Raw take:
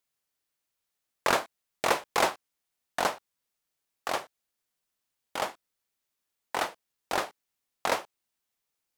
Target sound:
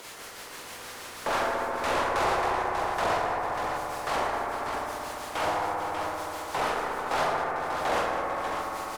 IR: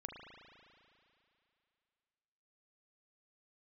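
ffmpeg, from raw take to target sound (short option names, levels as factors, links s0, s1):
-filter_complex "[0:a]highpass=f=160:w=0.5412,highpass=f=160:w=1.3066,bass=f=250:g=-3,treble=f=4000:g=4,acompressor=mode=upward:threshold=0.0447:ratio=2.5,acrossover=split=630[s0][s1];[s0]aeval=exprs='val(0)*(1-0.7/2+0.7/2*cos(2*PI*6.2*n/s))':c=same[s2];[s1]aeval=exprs='val(0)*(1-0.7/2-0.7/2*cos(2*PI*6.2*n/s))':c=same[s3];[s2][s3]amix=inputs=2:normalize=0,asplit=2[s4][s5];[s5]highpass=f=720:p=1,volume=70.8,asoftclip=type=tanh:threshold=0.224[s6];[s4][s6]amix=inputs=2:normalize=0,lowpass=f=1300:p=1,volume=0.501,aecho=1:1:46|110|200|274|447|591:0.531|0.316|0.335|0.126|0.251|0.501[s7];[1:a]atrim=start_sample=2205,asetrate=24255,aresample=44100[s8];[s7][s8]afir=irnorm=-1:irlink=0,volume=0.668"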